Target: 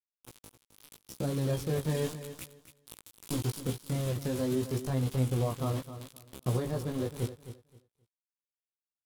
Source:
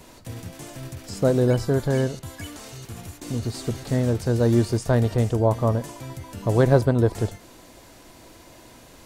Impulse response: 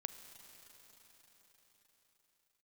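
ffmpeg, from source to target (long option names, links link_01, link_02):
-af "aeval=exprs='val(0)*gte(abs(val(0)),0.0422)':channel_layout=same,equalizer=frequency=3200:width=3.1:gain=3.5,dynaudnorm=framelen=310:gausssize=13:maxgain=16dB,alimiter=limit=-11.5dB:level=0:latency=1:release=331,equalizer=frequency=630:width_type=o:width=0.67:gain=-7,equalizer=frequency=1600:width_type=o:width=0.67:gain=-5,equalizer=frequency=10000:width_type=o:width=0.67:gain=6,flanger=delay=16.5:depth=4.4:speed=0.79,asetrate=48091,aresample=44100,atempo=0.917004,aecho=1:1:263|526|789:0.251|0.0527|0.0111,volume=-6dB"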